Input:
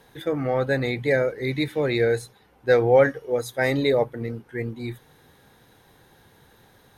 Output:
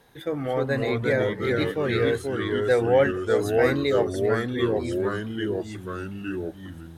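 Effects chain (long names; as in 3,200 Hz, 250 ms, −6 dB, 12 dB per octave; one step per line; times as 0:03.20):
delay with pitch and tempo change per echo 267 ms, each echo −2 semitones, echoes 3
level −3 dB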